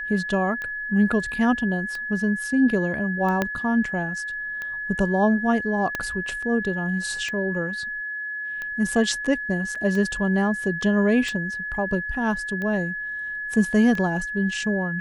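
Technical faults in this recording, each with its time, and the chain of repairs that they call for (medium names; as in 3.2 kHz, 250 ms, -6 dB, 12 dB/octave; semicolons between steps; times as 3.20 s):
tick 45 rpm -19 dBFS
whine 1.7 kHz -28 dBFS
3.42 s: pop -9 dBFS
5.95 s: pop -12 dBFS
9.75–9.76 s: dropout 5.1 ms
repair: de-click; band-stop 1.7 kHz, Q 30; interpolate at 9.75 s, 5.1 ms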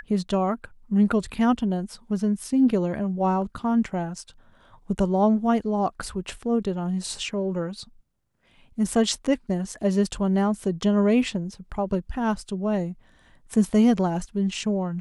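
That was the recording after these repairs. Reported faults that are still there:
3.42 s: pop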